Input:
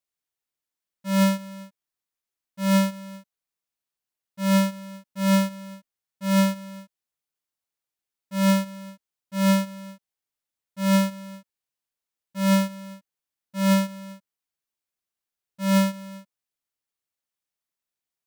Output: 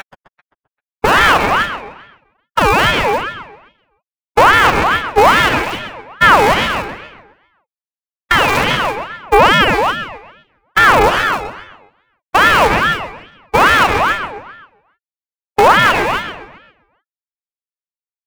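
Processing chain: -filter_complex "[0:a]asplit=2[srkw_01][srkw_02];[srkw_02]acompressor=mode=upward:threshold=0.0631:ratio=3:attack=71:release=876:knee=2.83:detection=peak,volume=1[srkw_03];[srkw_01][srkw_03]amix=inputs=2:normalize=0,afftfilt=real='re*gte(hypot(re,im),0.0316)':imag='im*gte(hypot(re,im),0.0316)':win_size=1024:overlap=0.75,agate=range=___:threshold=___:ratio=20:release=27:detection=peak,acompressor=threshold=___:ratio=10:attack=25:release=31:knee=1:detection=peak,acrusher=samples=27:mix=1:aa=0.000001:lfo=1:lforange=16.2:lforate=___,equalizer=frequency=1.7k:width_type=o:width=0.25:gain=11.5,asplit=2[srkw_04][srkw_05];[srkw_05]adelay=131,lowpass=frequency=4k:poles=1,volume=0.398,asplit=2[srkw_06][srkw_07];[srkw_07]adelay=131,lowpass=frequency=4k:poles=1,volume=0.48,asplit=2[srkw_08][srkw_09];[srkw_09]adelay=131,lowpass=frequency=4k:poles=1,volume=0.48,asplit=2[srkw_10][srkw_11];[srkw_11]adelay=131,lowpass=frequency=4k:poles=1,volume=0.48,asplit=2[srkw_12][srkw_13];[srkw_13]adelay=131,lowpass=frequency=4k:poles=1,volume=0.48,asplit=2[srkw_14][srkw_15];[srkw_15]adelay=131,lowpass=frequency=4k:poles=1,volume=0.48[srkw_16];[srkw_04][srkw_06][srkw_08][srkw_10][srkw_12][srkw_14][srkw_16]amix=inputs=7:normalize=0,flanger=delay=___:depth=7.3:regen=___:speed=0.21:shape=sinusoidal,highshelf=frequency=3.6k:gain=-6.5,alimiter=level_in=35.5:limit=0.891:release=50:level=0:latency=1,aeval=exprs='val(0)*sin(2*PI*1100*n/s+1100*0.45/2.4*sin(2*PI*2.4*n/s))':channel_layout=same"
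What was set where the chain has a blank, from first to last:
0.316, 0.0447, 0.0447, 0.29, 5.2, 9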